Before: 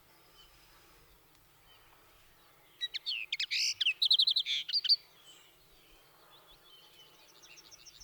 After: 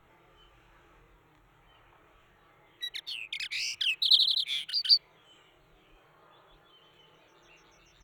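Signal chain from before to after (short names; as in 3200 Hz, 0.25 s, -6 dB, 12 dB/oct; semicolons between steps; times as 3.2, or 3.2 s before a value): Wiener smoothing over 9 samples; 2.99–3.72 high shelf 3700 Hz -6 dB; doubler 26 ms -3 dB; in parallel at -1.5 dB: level quantiser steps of 24 dB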